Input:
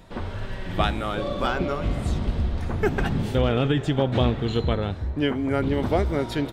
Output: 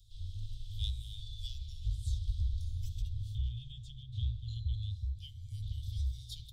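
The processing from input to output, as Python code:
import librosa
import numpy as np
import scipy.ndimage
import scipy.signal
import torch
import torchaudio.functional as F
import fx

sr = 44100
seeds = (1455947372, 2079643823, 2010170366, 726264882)

y = scipy.signal.sosfilt(scipy.signal.cheby1(5, 1.0, [110.0, 3400.0], 'bandstop', fs=sr, output='sos'), x)
y = fx.high_shelf(y, sr, hz=2600.0, db=-10.5, at=(3.02, 4.74))
y = F.gain(torch.from_numpy(y), -7.5).numpy()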